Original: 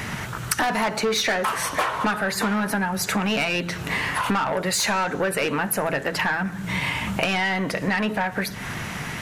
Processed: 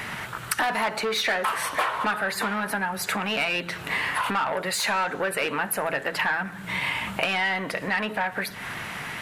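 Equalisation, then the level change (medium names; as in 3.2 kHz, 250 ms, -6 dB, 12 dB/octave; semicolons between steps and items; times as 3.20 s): bass shelf 360 Hz -11 dB; peaking EQ 6.1 kHz -7.5 dB 0.67 oct; treble shelf 11 kHz -4 dB; 0.0 dB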